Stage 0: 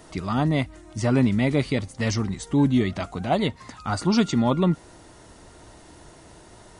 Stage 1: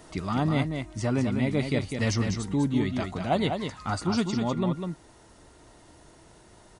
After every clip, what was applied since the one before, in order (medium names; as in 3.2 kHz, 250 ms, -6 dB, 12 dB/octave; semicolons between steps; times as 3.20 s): gain riding within 4 dB 0.5 s; on a send: delay 200 ms -6 dB; on the sum: trim -4.5 dB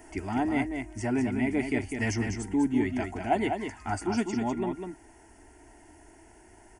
static phaser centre 790 Hz, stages 8; trim +2 dB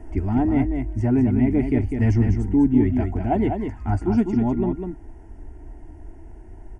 tilt EQ -4.5 dB/octave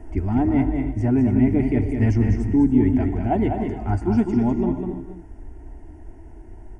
gated-style reverb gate 320 ms rising, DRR 9 dB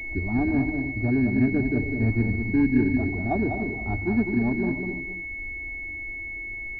hum notches 50/100 Hz; class-D stage that switches slowly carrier 2.2 kHz; trim -4 dB